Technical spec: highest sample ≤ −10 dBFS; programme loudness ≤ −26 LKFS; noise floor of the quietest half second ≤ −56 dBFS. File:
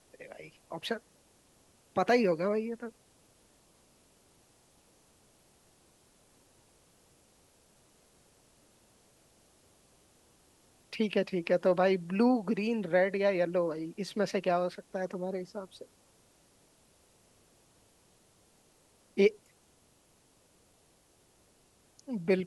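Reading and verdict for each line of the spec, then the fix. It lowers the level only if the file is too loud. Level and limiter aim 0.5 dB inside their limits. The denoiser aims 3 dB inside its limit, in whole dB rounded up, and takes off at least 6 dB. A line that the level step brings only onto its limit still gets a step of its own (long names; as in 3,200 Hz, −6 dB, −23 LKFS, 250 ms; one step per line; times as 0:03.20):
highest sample −12.5 dBFS: in spec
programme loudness −31.0 LKFS: in spec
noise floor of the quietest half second −66 dBFS: in spec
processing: no processing needed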